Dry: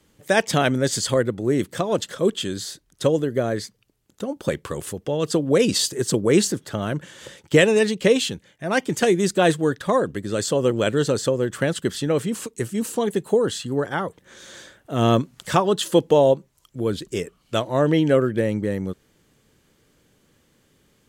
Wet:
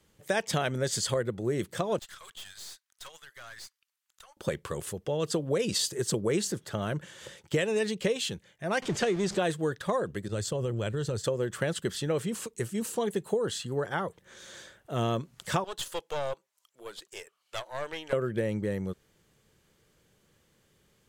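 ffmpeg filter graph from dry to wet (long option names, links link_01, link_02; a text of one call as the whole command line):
ffmpeg -i in.wav -filter_complex "[0:a]asettb=1/sr,asplit=3[link_01][link_02][link_03];[link_01]atrim=end=1.994[link_04];[link_02]atrim=start=1.99:end=4.37,asetpts=PTS-STARTPTS,afade=type=in:duration=0.004:curve=qsin,afade=type=out:start_time=2.376:duration=0.004:curve=qsin,highpass=frequency=1100:width=0.5412,highpass=frequency=1100:width=1.3066,aeval=exprs='(tanh(63.1*val(0)+0.6)-tanh(0.6))/63.1':channel_layout=same[link_05];[link_03]atrim=start=4.366[link_06];[link_04][link_05]acrossfade=duration=0.004:curve1=hsin:curve2=qsin[link_07];[link_07][link_06]acrossfade=duration=0.004:curve1=qsin:curve2=hsin,asettb=1/sr,asplit=3[link_08][link_09][link_10];[link_08]atrim=end=8.824[link_11];[link_09]atrim=start=8.82:end=9.39,asetpts=PTS-STARTPTS,afade=type=in:duration=0.004:curve=qsin,afade=type=out:start_time=0.566:duration=0.004:curve=qsin,aeval=exprs='val(0)+0.5*0.0422*sgn(val(0))':channel_layout=same,lowpass=6300[link_12];[link_10]atrim=start=9.386[link_13];[link_11][link_12]acrossfade=duration=0.004:curve1=hsin:curve2=qsin[link_14];[link_14][link_13]acrossfade=duration=0.004:curve1=qsin:curve2=hsin,asettb=1/sr,asplit=3[link_15][link_16][link_17];[link_15]atrim=end=10.284[link_18];[link_16]atrim=start=10.28:end=11.24,asetpts=PTS-STARTPTS,afade=type=in:duration=0.004:curve=qsin,afade=type=out:start_time=0.956:duration=0.004:curve=qsin,agate=range=-33dB:threshold=-24dB:ratio=3:release=100:detection=peak,equalizer=frequency=93:width_type=o:width=1.5:gain=11.5,acompressor=threshold=-21dB:ratio=6:attack=3.2:release=140:knee=1:detection=peak[link_19];[link_17]atrim=start=11.236[link_20];[link_18][link_19]acrossfade=duration=0.004:curve1=hsin:curve2=qsin[link_21];[link_21][link_20]acrossfade=duration=0.004:curve1=qsin:curve2=hsin,asettb=1/sr,asplit=3[link_22][link_23][link_24];[link_22]atrim=end=15.644[link_25];[link_23]atrim=start=15.64:end=18.13,asetpts=PTS-STARTPTS,afade=type=in:duration=0.004:curve=qsin,afade=type=out:start_time=2.486:duration=0.004:curve=qsin,highpass=760,aeval=exprs='(tanh(12.6*val(0)+0.75)-tanh(0.75))/12.6':channel_layout=same[link_26];[link_24]atrim=start=18.126[link_27];[link_25][link_26]acrossfade=duration=0.004:curve1=hsin:curve2=qsin[link_28];[link_28][link_27]acrossfade=duration=0.004:curve1=qsin:curve2=hsin,equalizer=frequency=270:width_type=o:width=0.31:gain=-9.5,acompressor=threshold=-19dB:ratio=6,volume=-5dB" out.wav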